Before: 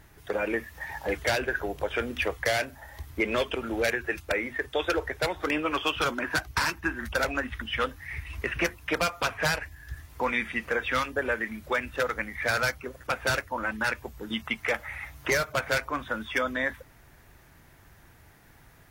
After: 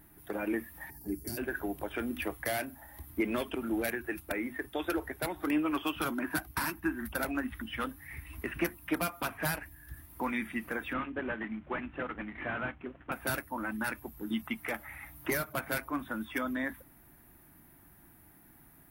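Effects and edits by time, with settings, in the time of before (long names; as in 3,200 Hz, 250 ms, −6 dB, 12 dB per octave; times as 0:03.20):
0:00.90–0:01.37: gain on a spectral selection 450–4,300 Hz −20 dB
0:10.93–0:13.12: variable-slope delta modulation 16 kbit/s
whole clip: drawn EQ curve 110 Hz 0 dB, 180 Hz +7 dB, 310 Hz +11 dB, 480 Hz −4 dB, 700 Hz +3 dB, 6,900 Hz −5 dB, 11,000 Hz +14 dB; level −8 dB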